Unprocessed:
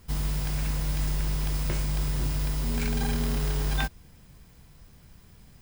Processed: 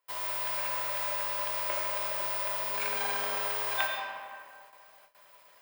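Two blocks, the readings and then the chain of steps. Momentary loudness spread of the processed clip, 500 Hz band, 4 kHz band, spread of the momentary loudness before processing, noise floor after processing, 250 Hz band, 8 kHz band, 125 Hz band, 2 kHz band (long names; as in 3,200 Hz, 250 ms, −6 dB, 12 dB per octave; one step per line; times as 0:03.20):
6 LU, +1.5 dB, 0.0 dB, 2 LU, −59 dBFS, −22.0 dB, −3.0 dB, −29.5 dB, +3.5 dB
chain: RIAA equalisation recording
comb and all-pass reverb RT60 2.2 s, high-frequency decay 0.55×, pre-delay 35 ms, DRR 1 dB
noise gate with hold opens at −33 dBFS
three-way crossover with the lows and the highs turned down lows −23 dB, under 470 Hz, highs −17 dB, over 3,100 Hz
hollow resonant body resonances 590/990 Hz, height 12 dB, ringing for 45 ms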